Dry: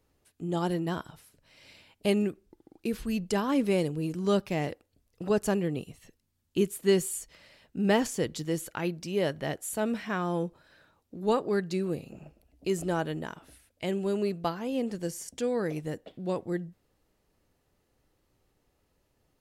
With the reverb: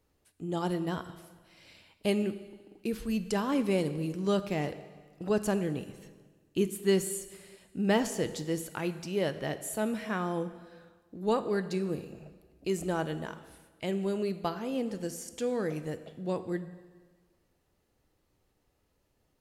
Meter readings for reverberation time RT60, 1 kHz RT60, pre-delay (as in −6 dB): 1.5 s, 1.5 s, 5 ms